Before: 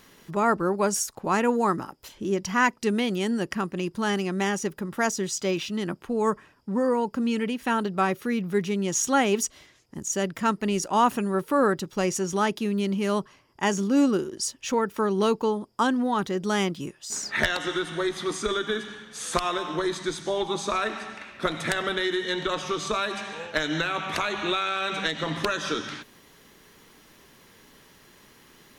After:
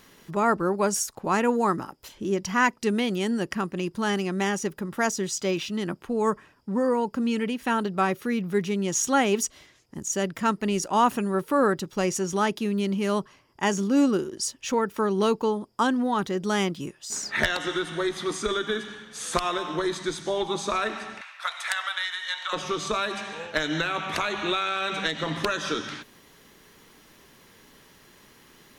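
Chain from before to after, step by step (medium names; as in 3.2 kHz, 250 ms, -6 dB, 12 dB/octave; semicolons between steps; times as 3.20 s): 21.21–22.53 s: inverse Chebyshev high-pass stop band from 330 Hz, stop band 50 dB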